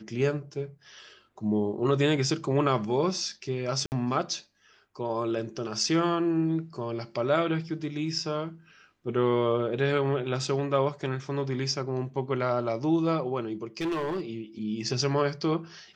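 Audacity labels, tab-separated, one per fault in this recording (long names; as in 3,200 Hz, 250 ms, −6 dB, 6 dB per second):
3.860000	3.920000	drop-out 59 ms
13.800000	14.210000	clipping −26 dBFS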